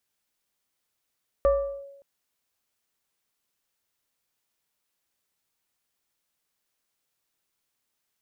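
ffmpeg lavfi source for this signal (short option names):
-f lavfi -i "aevalsrc='0.178*pow(10,-3*t/0.94)*sin(2*PI*557*t+0.53*clip(1-t/0.4,0,1)*sin(2*PI*1.1*557*t))':d=0.57:s=44100"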